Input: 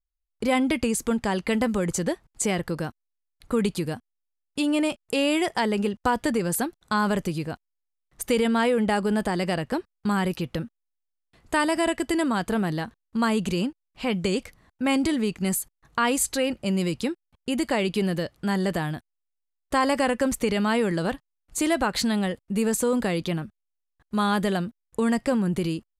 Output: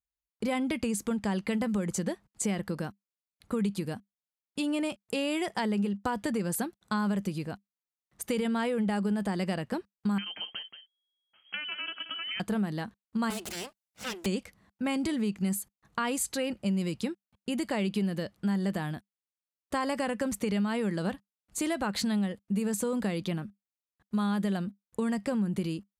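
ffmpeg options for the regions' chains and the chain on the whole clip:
-filter_complex "[0:a]asettb=1/sr,asplit=3[a][b][c];[a]atrim=end=10.184[d];[b]atrim=start=10.18:end=12.4,asetpts=PTS-STARTPTS,afade=t=in:d=0.004:c=qsin,afade=t=out:st=2.216:d=0.004:c=qsin,acrossover=split=190|680[e][f][g];[e]acompressor=threshold=-35dB:ratio=4[h];[f]acompressor=threshold=-38dB:ratio=4[i];[g]acompressor=threshold=-32dB:ratio=4[j];[h][i][j]amix=inputs=3:normalize=0,aecho=1:1:179:0.282,atrim=end_sample=97902,lowpass=f=2.8k:t=q:w=0.5098,lowpass=f=2.8k:t=q:w=0.6013,lowpass=f=2.8k:t=q:w=0.9,lowpass=f=2.8k:t=q:w=2.563,afreqshift=-3300[k];[c]atrim=start=12.396[l];[d][k]acrossfade=d=0.004:c1=hsin:c2=qsin[m];[m][l]acrossfade=d=0.004:c1=qsin:c2=hsin,asettb=1/sr,asplit=3[n][o][p];[n]atrim=end=13.304[q];[o]atrim=start=13.3:end=14.26,asetpts=PTS-STARTPTS,afade=t=in:d=0.004:c=qsin,afade=t=out:st=0.956:d=0.004:c=qsin,bass=f=250:g=-8,treble=f=4k:g=7,aecho=1:1:1.4:0.71,atrim=end_sample=42336,aeval=exprs='abs(val(0))':c=same[r];[p]atrim=start=14.256[s];[q][r]acrossfade=d=0.004:c1=hsin:c2=qsin[t];[t][s]acrossfade=d=0.004:c1=qsin:c2=hsin,highpass=60,equalizer=f=200:w=7.4:g=10,acompressor=threshold=-20dB:ratio=6,volume=-5.5dB"

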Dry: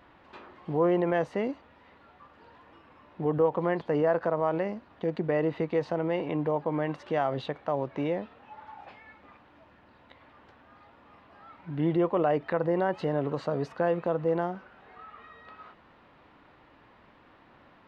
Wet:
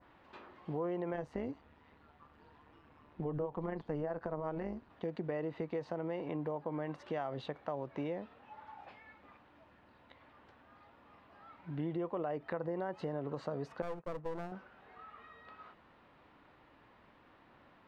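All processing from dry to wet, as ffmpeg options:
-filter_complex "[0:a]asettb=1/sr,asplit=3[a][b][c];[a]atrim=end=1.144[d];[b]atrim=start=1.14:end=4.9,asetpts=PTS-STARTPTS,afade=t=in:d=0.004:c=qsin,afade=t=out:st=3.756:d=0.004:c=qsin,lowshelf=f=220:g=8.5,bandreject=f=560:w=11,tremolo=f=150:d=0.621[e];[c]atrim=start=4.896[f];[d][e]acrossfade=d=0.004:c1=hsin:c2=qsin[g];[g][f]acrossfade=d=0.004:c1=qsin:c2=hsin,asettb=1/sr,asplit=3[h][i][j];[h]atrim=end=13.824[k];[i]atrim=start=13.82:end=14.52,asetpts=PTS-STARTPTS,afade=t=in:d=0.004:c=qsin,afade=t=out:st=0.696:d=0.004:c=qsin,agate=range=-33dB:threshold=-29dB:ratio=3:release=100:detection=peak,lowpass=f=1.1k:p=1,aeval=exprs='clip(val(0),-1,0.00944)':c=same[l];[j]atrim=start=14.516[m];[k][l]acrossfade=d=0.004:c1=hsin:c2=qsin[n];[n][m]acrossfade=d=0.004:c1=qsin:c2=hsin,adynamicequalizer=threshold=0.00398:dfrequency=3000:dqfactor=1.1:tfrequency=3000:tqfactor=1.1:attack=5:release=100:ratio=0.375:range=2:mode=cutabove:tftype=bell,acompressor=threshold=-29dB:ratio=4,volume=-5.5dB"

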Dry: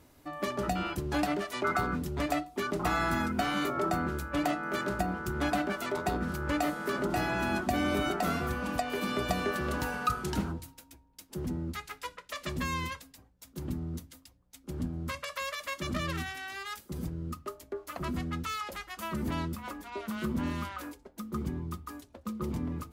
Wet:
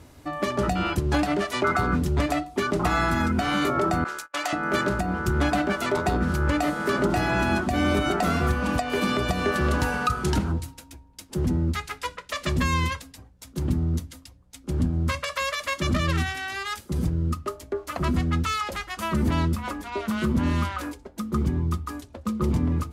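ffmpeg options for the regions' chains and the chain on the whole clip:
-filter_complex "[0:a]asettb=1/sr,asplit=3[a][b][c];[a]atrim=end=4.044[d];[b]atrim=start=4.04:end=4.53,asetpts=PTS-STARTPTS,afade=t=in:d=0.004:c=qsin,afade=t=out:st=0.486:d=0.004:c=qsin,agate=range=-35dB:threshold=-36dB:ratio=16:release=100:detection=peak,highpass=880,equalizer=f=6.3k:w=1.2:g=5[e];[c]atrim=start=4.526[f];[d][e]acrossfade=d=0.004:c1=hsin:c2=qsin[g];[g][f]acrossfade=d=0.004:c1=qsin:c2=hsin,lowpass=11k,equalizer=f=82:t=o:w=1.3:g=6,alimiter=limit=-21.5dB:level=0:latency=1:release=189,volume=8.5dB"

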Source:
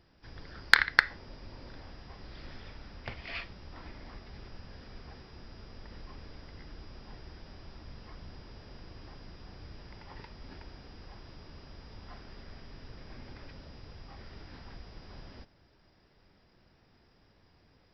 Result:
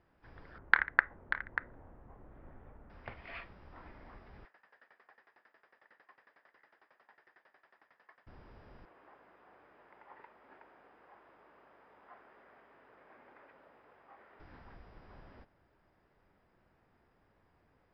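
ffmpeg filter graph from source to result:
-filter_complex "[0:a]asettb=1/sr,asplit=3[a][b][c];[a]atrim=end=0.584[d];[b]atrim=start=0.58:end=2.9,asetpts=PTS-STARTPTS,afade=t=in:d=0.004:c=qsin,afade=t=out:st=2.316:d=0.004:c=qsin,adynamicsmooth=sensitivity=2:basefreq=1.1k,lowpass=f=3.8k:w=0.5412,lowpass=f=3.8k:w=1.3066,aecho=1:1:588:0.335,atrim=end_sample=102312[e];[c]atrim=start=2.896[f];[d][e]acrossfade=d=0.004:c1=hsin:c2=qsin[g];[g][f]acrossfade=d=0.004:c1=qsin:c2=hsin,asettb=1/sr,asplit=3[h][i][j];[h]atrim=end=4.454[k];[i]atrim=start=4.45:end=8.27,asetpts=PTS-STARTPTS,afade=t=in:d=0.004:c=qsin,afade=t=out:st=3.816:d=0.004:c=qsin,highpass=610,lowpass=6k,equalizer=f=1.8k:t=o:w=0.32:g=10.5,aeval=exprs='val(0)*pow(10,-21*if(lt(mod(11*n/s,1),2*abs(11)/1000),1-mod(11*n/s,1)/(2*abs(11)/1000),(mod(11*n/s,1)-2*abs(11)/1000)/(1-2*abs(11)/1000))/20)':c=same[l];[j]atrim=start=8.266[m];[k][l]acrossfade=d=0.004:c1=hsin:c2=qsin[n];[n][m]acrossfade=d=0.004:c1=qsin:c2=hsin,asettb=1/sr,asplit=3[o][p][q];[o]atrim=end=8.854[r];[p]atrim=start=8.85:end=14.4,asetpts=PTS-STARTPTS,afade=t=in:d=0.004:c=qsin,afade=t=out:st=5.546:d=0.004:c=qsin,highpass=420,lowpass=2.6k,aeval=exprs='val(0)+0.000141*(sin(2*PI*50*n/s)+sin(2*PI*2*50*n/s)/2+sin(2*PI*3*50*n/s)/3+sin(2*PI*4*50*n/s)/4+sin(2*PI*5*50*n/s)/5)':c=same[s];[q]atrim=start=14.396[t];[r][s]acrossfade=d=0.004:c1=hsin:c2=qsin[u];[u][t]acrossfade=d=0.004:c1=qsin:c2=hsin,lowpass=1.6k,lowshelf=f=490:g=-8.5"

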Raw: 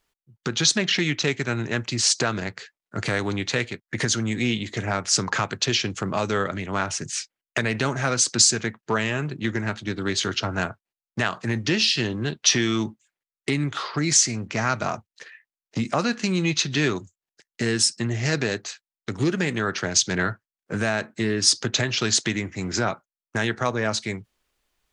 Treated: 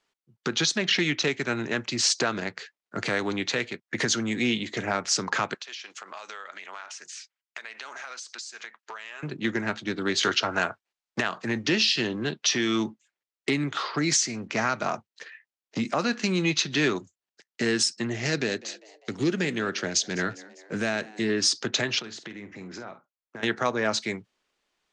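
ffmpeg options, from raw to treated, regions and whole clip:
-filter_complex "[0:a]asettb=1/sr,asplit=3[a][b][c];[a]atrim=end=5.544[d];[b]atrim=start=5.54:end=9.23,asetpts=PTS-STARTPTS,afade=t=in:d=0.004:c=qsin,afade=t=out:st=3.686:d=0.004:c=qsin,highpass=930,acompressor=threshold=-35dB:ratio=8:attack=3.2:release=140:knee=1:detection=peak[e];[c]atrim=start=9.226[f];[d][e]acrossfade=d=0.004:c1=hsin:c2=qsin[g];[g][f]acrossfade=d=0.004:c1=qsin:c2=hsin,asettb=1/sr,asplit=3[h][i][j];[h]atrim=end=10.234[k];[i]atrim=start=10.23:end=11.21,asetpts=PTS-STARTPTS,afade=t=in:d=0.004:c=qsin,afade=t=out:st=0.976:d=0.004:c=qsin,equalizer=f=180:w=0.52:g=-7.5,acontrast=76[l];[j]atrim=start=11.206[m];[k][l]acrossfade=d=0.004:c1=hsin:c2=qsin[n];[n][m]acrossfade=d=0.004:c1=qsin:c2=hsin,asettb=1/sr,asplit=3[o][p][q];[o]atrim=end=18.274[r];[p]atrim=start=18.27:end=21.29,asetpts=PTS-STARTPTS,afade=t=in:d=0.004:c=qsin,afade=t=out:st=3.016:d=0.004:c=qsin,equalizer=f=1k:t=o:w=1.7:g=-6,asplit=5[s][t][u][v][w];[t]adelay=200,afreqshift=100,volume=-21.5dB[x];[u]adelay=400,afreqshift=200,volume=-27.2dB[y];[v]adelay=600,afreqshift=300,volume=-32.9dB[z];[w]adelay=800,afreqshift=400,volume=-38.5dB[aa];[s][x][y][z][aa]amix=inputs=5:normalize=0,atrim=end_sample=133182[ab];[q]atrim=start=21.286[ac];[r][ab]acrossfade=d=0.004:c1=hsin:c2=qsin[ad];[ad][ac]acrossfade=d=0.004:c1=qsin:c2=hsin,asettb=1/sr,asplit=3[ae][af][ag];[ae]atrim=end=21.994[ah];[af]atrim=start=21.99:end=23.43,asetpts=PTS-STARTPTS,afade=t=in:d=0.004:c=qsin,afade=t=out:st=1.436:d=0.004:c=qsin,lowpass=f=2.2k:p=1,acompressor=threshold=-37dB:ratio=4:attack=3.2:release=140:knee=1:detection=peak,asplit=2[ai][aj];[aj]adelay=49,volume=-11.5dB[ak];[ai][ak]amix=inputs=2:normalize=0,atrim=end_sample=63504[al];[ag]atrim=start=23.426[am];[ah][al]acrossfade=d=0.004:c1=hsin:c2=qsin[an];[an][am]acrossfade=d=0.004:c1=qsin:c2=hsin,acrossover=split=160 8000:gain=0.158 1 0.0708[ao][ap][aq];[ao][ap][aq]amix=inputs=3:normalize=0,alimiter=limit=-12dB:level=0:latency=1:release=286"

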